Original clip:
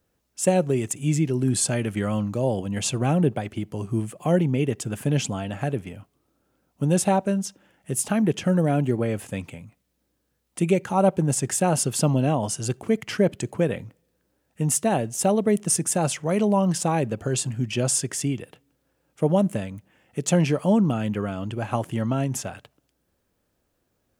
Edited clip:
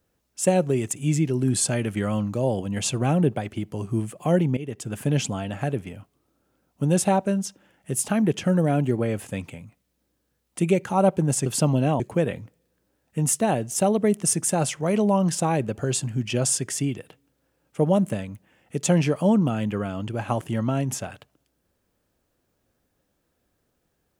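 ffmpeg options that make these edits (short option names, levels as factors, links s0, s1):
-filter_complex "[0:a]asplit=4[s0][s1][s2][s3];[s0]atrim=end=4.57,asetpts=PTS-STARTPTS,afade=t=out:st=4.566:d=0.004:c=hsin:silence=0.188365[s4];[s1]atrim=start=4.57:end=11.462,asetpts=PTS-STARTPTS,afade=t=in:d=0.44:silence=0.188365[s5];[s2]atrim=start=11.868:end=12.412[s6];[s3]atrim=start=13.428[s7];[s4][s5]concat=n=2:v=0:a=1[s8];[s8][s6]acrossfade=d=0.004:c1=hsin:c2=hsin[s9];[s9][s7]acrossfade=d=0.004:c1=hsin:c2=hsin"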